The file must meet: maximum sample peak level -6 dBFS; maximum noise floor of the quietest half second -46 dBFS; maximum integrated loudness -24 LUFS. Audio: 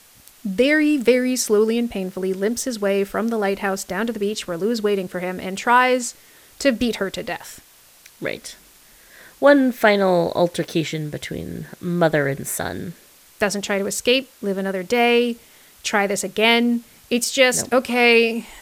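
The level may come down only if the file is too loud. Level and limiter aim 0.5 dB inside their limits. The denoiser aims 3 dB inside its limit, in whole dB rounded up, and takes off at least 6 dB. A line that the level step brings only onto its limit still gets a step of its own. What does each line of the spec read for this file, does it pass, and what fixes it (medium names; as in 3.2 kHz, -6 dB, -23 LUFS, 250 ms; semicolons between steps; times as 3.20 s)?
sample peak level -2.5 dBFS: fail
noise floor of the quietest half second -50 dBFS: pass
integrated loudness -20.0 LUFS: fail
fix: trim -4.5 dB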